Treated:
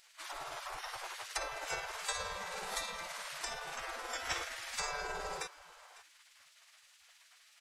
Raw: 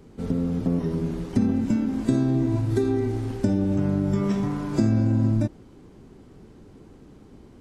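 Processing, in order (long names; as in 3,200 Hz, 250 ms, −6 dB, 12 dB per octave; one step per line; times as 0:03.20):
high-pass filter 49 Hz 6 dB per octave
amplitude tremolo 19 Hz, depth 29%
single-tap delay 551 ms −19 dB
gate on every frequency bin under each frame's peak −30 dB weak
level +8 dB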